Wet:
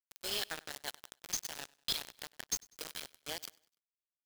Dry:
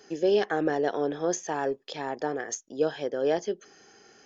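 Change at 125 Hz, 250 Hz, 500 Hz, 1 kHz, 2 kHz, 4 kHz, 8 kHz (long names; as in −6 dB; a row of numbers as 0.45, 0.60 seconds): −16.0 dB, −25.0 dB, −25.5 dB, −18.0 dB, −9.0 dB, +3.5 dB, can't be measured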